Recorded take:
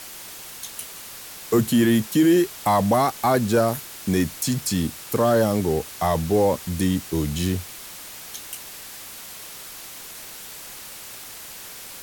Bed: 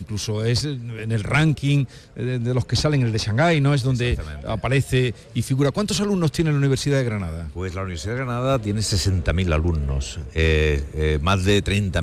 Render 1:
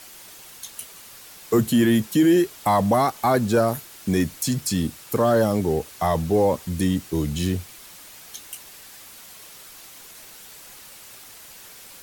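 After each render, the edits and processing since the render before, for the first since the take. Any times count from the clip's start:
broadband denoise 6 dB, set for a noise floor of −39 dBFS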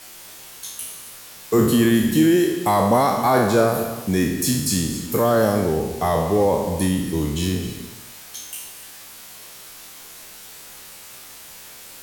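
peak hold with a decay on every bin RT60 0.84 s
reverb whose tail is shaped and stops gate 300 ms rising, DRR 10.5 dB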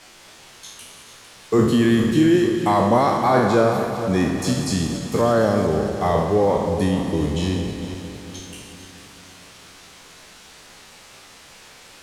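feedback delay that plays each chunk backwards 227 ms, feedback 69%, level −10 dB
high-frequency loss of the air 73 metres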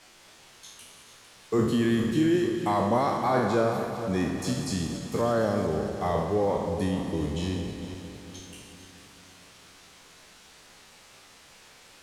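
level −7.5 dB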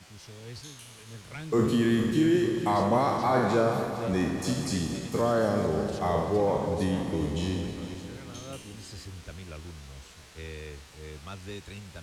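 mix in bed −22.5 dB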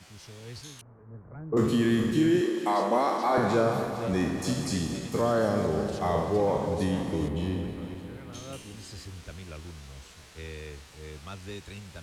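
0:00.81–0:01.57: Bessel low-pass filter 830 Hz, order 8
0:02.41–0:03.38: high-pass filter 240 Hz 24 dB per octave
0:07.28–0:08.33: parametric band 6,100 Hz −14 dB 1.4 octaves

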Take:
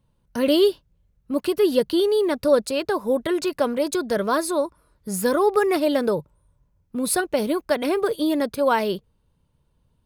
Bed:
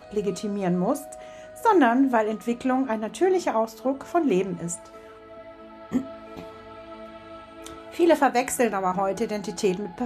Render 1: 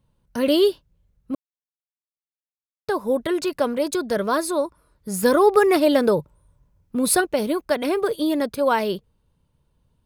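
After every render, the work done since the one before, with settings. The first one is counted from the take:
0:01.35–0:02.88: silence
0:05.23–0:07.25: clip gain +3.5 dB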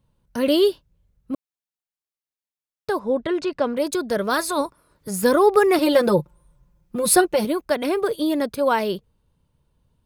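0:02.99–0:03.77: high-frequency loss of the air 110 metres
0:04.29–0:05.09: ceiling on every frequency bin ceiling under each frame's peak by 13 dB
0:05.78–0:07.45: comb filter 5.7 ms, depth 86%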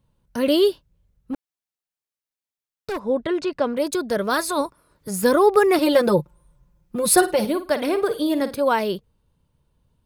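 0:01.33–0:03.03: hard clipping −23.5 dBFS
0:07.12–0:08.59: flutter between parallel walls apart 9.1 metres, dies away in 0.27 s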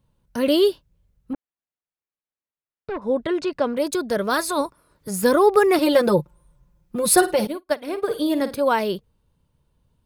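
0:01.33–0:03.02: high-frequency loss of the air 430 metres
0:07.47–0:08.08: expander for the loud parts 2.5 to 1, over −39 dBFS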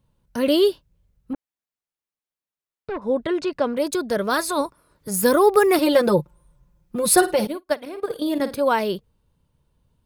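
0:05.11–0:05.81: high-shelf EQ 9,900 Hz +9.5 dB
0:07.85–0:08.40: output level in coarse steps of 11 dB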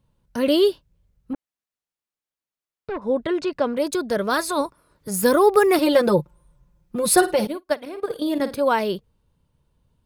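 high-shelf EQ 10,000 Hz −3.5 dB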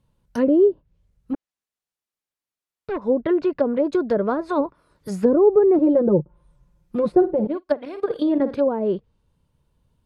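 treble cut that deepens with the level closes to 480 Hz, closed at −16 dBFS
dynamic equaliser 330 Hz, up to +4 dB, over −30 dBFS, Q 0.76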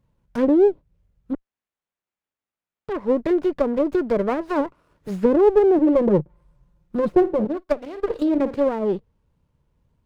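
windowed peak hold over 9 samples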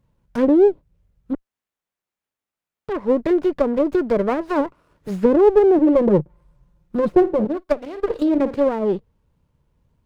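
level +2 dB

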